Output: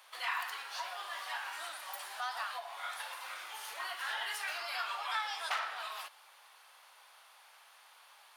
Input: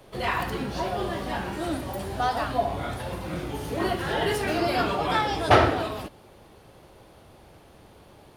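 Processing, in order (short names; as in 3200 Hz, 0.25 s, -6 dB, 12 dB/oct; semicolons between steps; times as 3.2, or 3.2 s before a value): one-sided fold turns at -12 dBFS; compressor 3:1, threshold -31 dBFS, peak gain reduction 13 dB; HPF 1000 Hz 24 dB/oct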